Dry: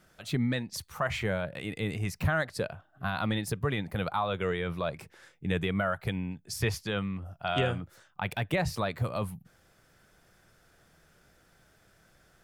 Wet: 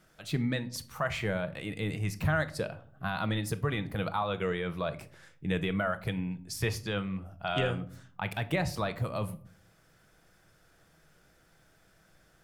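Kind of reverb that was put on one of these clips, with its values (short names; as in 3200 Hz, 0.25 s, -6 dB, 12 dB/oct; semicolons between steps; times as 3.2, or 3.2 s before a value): shoebox room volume 590 m³, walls furnished, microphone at 0.62 m; gain -1.5 dB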